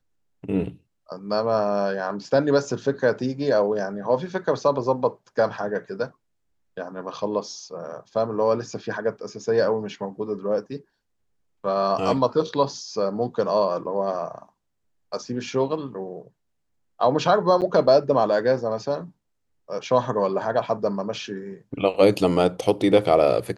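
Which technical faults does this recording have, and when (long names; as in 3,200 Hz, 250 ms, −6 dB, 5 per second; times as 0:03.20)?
0:17.61–0:17.62: drop-out 8.5 ms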